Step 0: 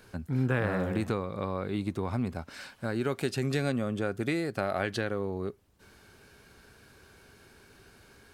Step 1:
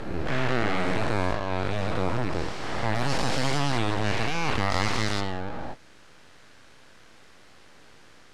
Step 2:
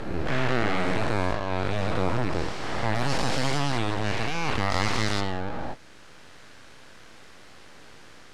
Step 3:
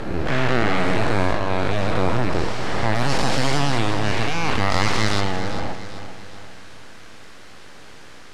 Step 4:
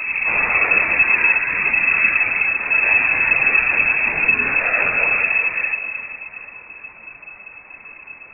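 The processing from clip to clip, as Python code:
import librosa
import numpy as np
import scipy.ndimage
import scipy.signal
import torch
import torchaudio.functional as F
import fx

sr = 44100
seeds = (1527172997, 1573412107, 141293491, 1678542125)

y1 = fx.spec_dilate(x, sr, span_ms=480)
y1 = np.abs(y1)
y1 = scipy.signal.sosfilt(scipy.signal.butter(2, 7200.0, 'lowpass', fs=sr, output='sos'), y1)
y2 = fx.rider(y1, sr, range_db=4, speed_s=2.0)
y3 = fx.echo_feedback(y2, sr, ms=394, feedback_pct=46, wet_db=-11.0)
y3 = y3 * librosa.db_to_amplitude(5.0)
y4 = fx.phase_scramble(y3, sr, seeds[0], window_ms=50)
y4 = fx.freq_invert(y4, sr, carrier_hz=2600)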